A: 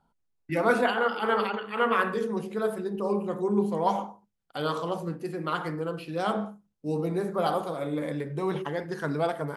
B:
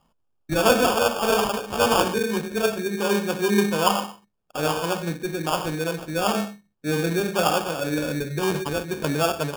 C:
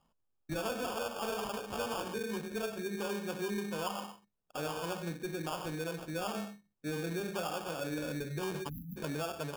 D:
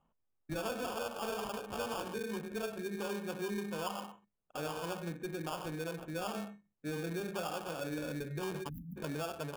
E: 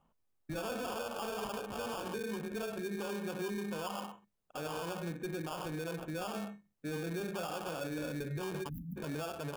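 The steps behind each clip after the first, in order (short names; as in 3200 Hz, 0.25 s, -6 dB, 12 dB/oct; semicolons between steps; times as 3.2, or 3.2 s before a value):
sample-and-hold 22×; gain +5 dB
spectral delete 8.69–8.97, 290–11000 Hz; compressor, threshold -24 dBFS, peak gain reduction 11.5 dB; soft clip -16.5 dBFS, distortion -25 dB; gain -8.5 dB
Wiener smoothing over 9 samples; gain -1.5 dB
limiter -35 dBFS, peak gain reduction 7 dB; gain +3 dB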